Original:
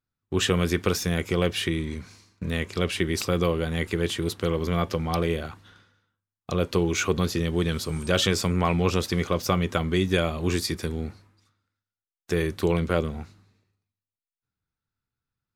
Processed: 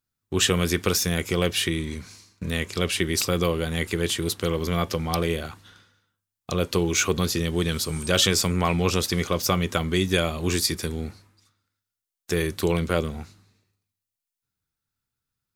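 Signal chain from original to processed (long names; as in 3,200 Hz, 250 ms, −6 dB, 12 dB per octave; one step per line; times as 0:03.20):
high-shelf EQ 3,900 Hz +9.5 dB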